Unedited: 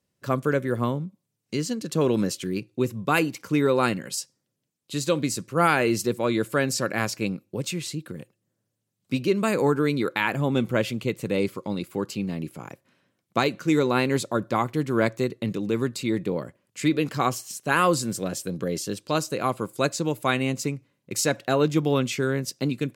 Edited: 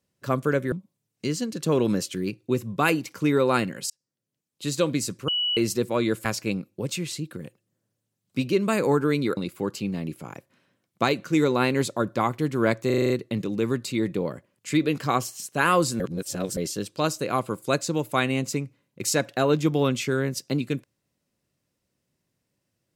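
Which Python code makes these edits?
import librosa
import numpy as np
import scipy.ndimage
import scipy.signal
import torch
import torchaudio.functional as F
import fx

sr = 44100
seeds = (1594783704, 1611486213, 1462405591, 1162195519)

y = fx.edit(x, sr, fx.cut(start_s=0.72, length_s=0.29),
    fx.fade_in_span(start_s=4.19, length_s=0.75),
    fx.bleep(start_s=5.57, length_s=0.29, hz=2940.0, db=-22.0),
    fx.cut(start_s=6.54, length_s=0.46),
    fx.cut(start_s=10.12, length_s=1.6),
    fx.stutter(start_s=15.21, slice_s=0.04, count=7),
    fx.reverse_span(start_s=18.11, length_s=0.57), tone=tone)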